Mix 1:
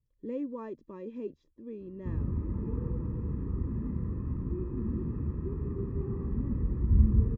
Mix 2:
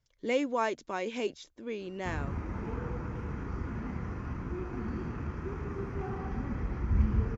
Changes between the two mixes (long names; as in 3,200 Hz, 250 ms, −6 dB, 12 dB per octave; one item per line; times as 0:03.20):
background −4.5 dB
master: remove moving average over 60 samples